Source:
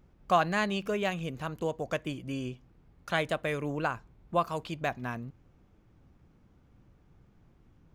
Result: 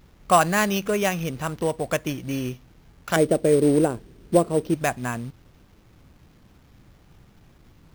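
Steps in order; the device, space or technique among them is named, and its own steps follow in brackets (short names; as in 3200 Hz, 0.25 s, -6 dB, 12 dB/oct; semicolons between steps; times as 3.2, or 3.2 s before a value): 3.16–4.75 EQ curve 110 Hz 0 dB, 410 Hz +12 dB, 1100 Hz -13 dB; early companding sampler (sample-rate reducer 8800 Hz, jitter 0%; companded quantiser 6-bit); gain +7.5 dB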